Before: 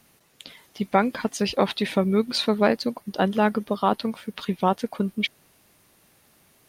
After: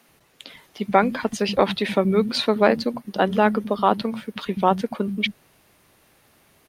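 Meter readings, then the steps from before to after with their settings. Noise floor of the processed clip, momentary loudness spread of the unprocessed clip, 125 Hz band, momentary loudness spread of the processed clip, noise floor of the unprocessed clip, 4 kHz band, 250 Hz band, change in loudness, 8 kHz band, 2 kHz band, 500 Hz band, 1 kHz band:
-59 dBFS, 8 LU, +1.0 dB, 8 LU, -60 dBFS, +1.5 dB, +1.0 dB, +2.5 dB, -1.0 dB, +3.0 dB, +3.5 dB, +3.5 dB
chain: tone controls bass 0 dB, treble -5 dB; bands offset in time highs, lows 80 ms, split 190 Hz; gain +3.5 dB

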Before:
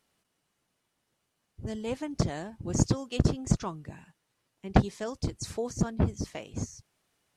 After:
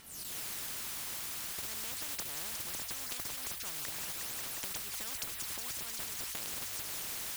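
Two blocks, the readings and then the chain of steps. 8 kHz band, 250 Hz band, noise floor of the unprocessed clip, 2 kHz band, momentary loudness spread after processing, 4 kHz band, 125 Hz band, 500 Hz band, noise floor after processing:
+3.5 dB, -23.5 dB, -79 dBFS, +1.0 dB, 1 LU, +4.0 dB, -25.5 dB, -18.0 dB, -43 dBFS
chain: recorder AGC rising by 79 dB/s; high shelf 7200 Hz +10.5 dB; phaser 0.45 Hz, delay 1 ms, feedback 73%; notches 50/100 Hz; modulation noise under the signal 19 dB; passive tone stack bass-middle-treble 5-5-5; on a send: thin delay 0.179 s, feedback 71%, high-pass 1400 Hz, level -16 dB; on the sum: compressor 6:1, threshold -35 dBFS, peak gain reduction 17 dB; spectral compressor 10:1; gain -2.5 dB

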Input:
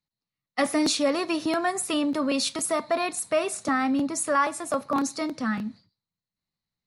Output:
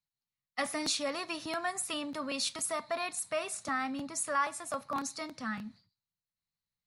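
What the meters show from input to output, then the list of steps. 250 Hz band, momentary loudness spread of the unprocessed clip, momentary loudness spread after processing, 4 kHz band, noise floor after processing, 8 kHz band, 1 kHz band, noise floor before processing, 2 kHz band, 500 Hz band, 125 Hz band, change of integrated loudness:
-14.0 dB, 6 LU, 7 LU, -5.5 dB, under -85 dBFS, -5.5 dB, -7.5 dB, under -85 dBFS, -6.0 dB, -11.0 dB, -9.5 dB, -8.5 dB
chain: bell 350 Hz -10 dB 1.6 oct; gain -5.5 dB

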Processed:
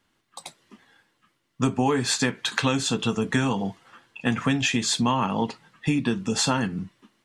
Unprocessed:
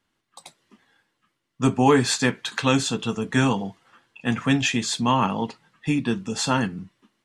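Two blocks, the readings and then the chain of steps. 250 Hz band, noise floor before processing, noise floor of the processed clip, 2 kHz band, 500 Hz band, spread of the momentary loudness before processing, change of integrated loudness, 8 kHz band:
-2.0 dB, -76 dBFS, -72 dBFS, -1.5 dB, -3.5 dB, 11 LU, -2.0 dB, +0.5 dB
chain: compressor 6:1, threshold -24 dBFS, peak gain reduction 11.5 dB; gain +4.5 dB

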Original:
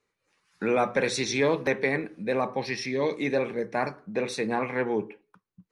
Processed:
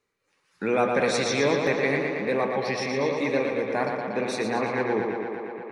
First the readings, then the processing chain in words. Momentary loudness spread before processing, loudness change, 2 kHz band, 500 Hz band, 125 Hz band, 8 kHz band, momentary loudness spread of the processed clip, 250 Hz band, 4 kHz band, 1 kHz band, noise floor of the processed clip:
6 LU, +2.0 dB, +2.5 dB, +2.5 dB, +2.0 dB, +1.0 dB, 6 LU, +2.0 dB, +2.0 dB, +3.0 dB, -72 dBFS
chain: tape echo 0.116 s, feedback 85%, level -4 dB, low-pass 5900 Hz

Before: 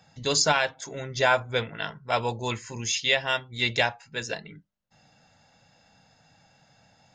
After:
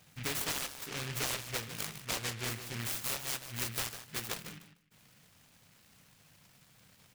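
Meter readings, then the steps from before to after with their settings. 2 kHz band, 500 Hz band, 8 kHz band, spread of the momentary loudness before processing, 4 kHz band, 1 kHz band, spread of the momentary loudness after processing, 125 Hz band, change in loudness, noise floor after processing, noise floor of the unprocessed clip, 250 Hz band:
-13.5 dB, -17.5 dB, -6.0 dB, 12 LU, -10.5 dB, -16.0 dB, 6 LU, -7.5 dB, -10.0 dB, -64 dBFS, -63 dBFS, -8.5 dB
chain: compressor 4:1, threshold -32 dBFS, peak gain reduction 13 dB; feedback echo 0.151 s, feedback 20%, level -11 dB; noise-modulated delay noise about 2100 Hz, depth 0.45 ms; gain -2.5 dB

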